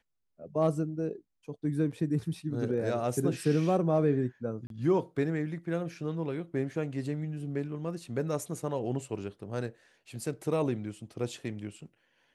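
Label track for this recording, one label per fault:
4.670000	4.700000	drop-out 32 ms

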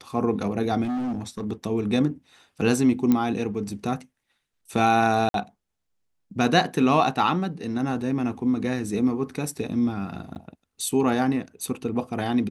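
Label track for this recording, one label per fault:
0.830000	1.450000	clipping −25 dBFS
3.120000	3.120000	click −10 dBFS
5.290000	5.340000	drop-out 52 ms
10.350000	10.360000	drop-out 9.8 ms

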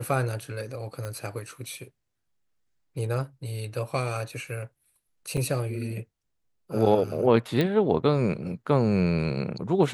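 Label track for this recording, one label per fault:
1.050000	1.050000	click −21 dBFS
5.370000	5.380000	drop-out 5.1 ms
7.610000	7.610000	click −13 dBFS

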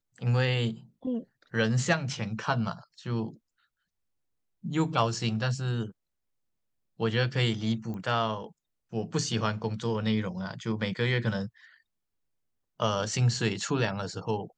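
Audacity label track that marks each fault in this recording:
7.940000	7.940000	click −28 dBFS

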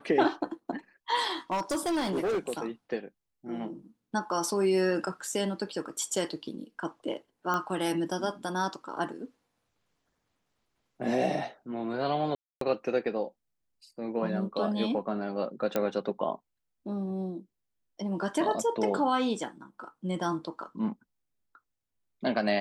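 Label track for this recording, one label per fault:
1.520000	2.660000	clipping −25.5 dBFS
7.540000	7.540000	click −17 dBFS
12.350000	12.610000	drop-out 263 ms
15.760000	15.760000	click −14 dBFS

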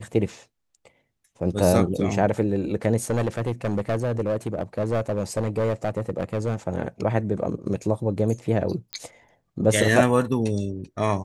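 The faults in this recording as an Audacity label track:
3.100000	6.560000	clipping −19 dBFS
8.930000	8.930000	click −14 dBFS

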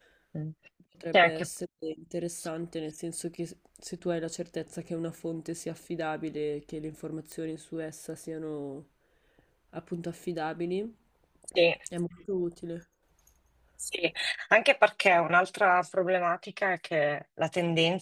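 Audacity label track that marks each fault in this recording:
7.320000	7.320000	click

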